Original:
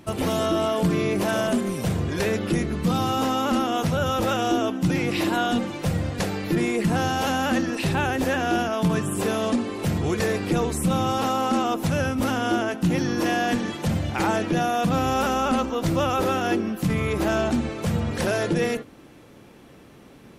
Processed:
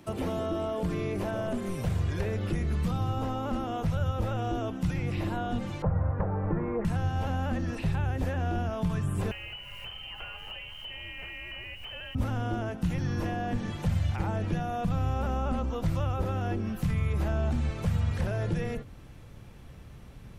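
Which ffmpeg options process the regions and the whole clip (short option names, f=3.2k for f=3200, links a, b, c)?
-filter_complex "[0:a]asettb=1/sr,asplit=3[a][b][c];[a]atrim=end=5.824[d];[b]atrim=start=5.82:end=6.85,asetpts=PTS-STARTPTS,afade=t=in:d=0.004:c=qsin,afade=t=out:st=1.026:d=0.004:c=qsin,lowpass=f=1.4k:w=0.5412,lowpass=f=1.4k:w=1.3066,equalizer=f=780:t=o:w=2.2:g=11,bandreject=f=720:w=12[e];[c]atrim=start=6.846[f];[d][e]acrossfade=d=0.004:c1=hsin:c2=qsin[g];[g][f]acrossfade=d=0.004:c1=qsin:c2=hsin,asettb=1/sr,asplit=3[h][i][j];[h]atrim=end=9.314[k];[i]atrim=start=9.31:end=12.15,asetpts=PTS-STARTPTS,afade=t=in:d=0.004:c=qsin,afade=t=out:st=2.836:d=0.004:c=qsin,lowpass=f=2.7k:t=q:w=0.5098,lowpass=f=2.7k:t=q:w=0.6013,lowpass=f=2.7k:t=q:w=0.9,lowpass=f=2.7k:t=q:w=2.563,afreqshift=-3200,acrusher=bits=7:dc=4:mix=0:aa=0.000001[l];[j]atrim=start=12.146[m];[k][l]acrossfade=d=0.004:c1=hsin:c2=qsin[n];[n][m]acrossfade=d=0.004:c1=qsin:c2=hsin,acrossover=split=3000[o][p];[p]acompressor=threshold=-41dB:ratio=4:attack=1:release=60[q];[o][q]amix=inputs=2:normalize=0,asubboost=boost=10.5:cutoff=90,acrossover=split=83|820[r][s][t];[r]acompressor=threshold=-28dB:ratio=4[u];[s]acompressor=threshold=-24dB:ratio=4[v];[t]acompressor=threshold=-38dB:ratio=4[w];[u][v][w]amix=inputs=3:normalize=0,volume=-4.5dB"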